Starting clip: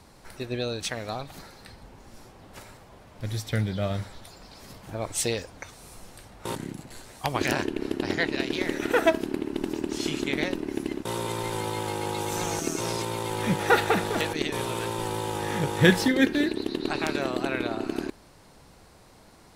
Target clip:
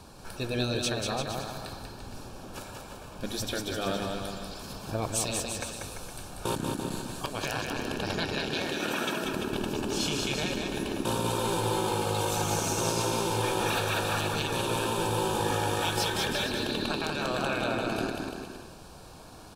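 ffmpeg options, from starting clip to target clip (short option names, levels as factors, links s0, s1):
-filter_complex "[0:a]asettb=1/sr,asplit=3[s0][s1][s2];[s0]atrim=end=8.484[s3];[s1]atrim=start=8.48:end=9.25,asetpts=PTS-STARTPTS,afade=t=in:d=0.004:c=qsin,afade=t=out:st=0.766:d=0.004:c=qsin,highpass=f=130:w=0.5412,highpass=f=130:w=1.3066[s4];[s2]atrim=start=9.246[s5];[s3][s4]acrossfade=d=0.004:c1=hsin:c2=qsin[s6];[s6][s5]acrossfade=d=0.004:c1=qsin:c2=hsin,afftfilt=real='re*lt(hypot(re,im),0.2)':imag='im*lt(hypot(re,im),0.2)':win_size=1024:overlap=0.75,alimiter=limit=0.0794:level=0:latency=1:release=400,asuperstop=centerf=2000:order=4:qfactor=4.4,aecho=1:1:190|342|463.6|560.9|638.7:0.631|0.398|0.251|0.158|0.1,volume=1.5"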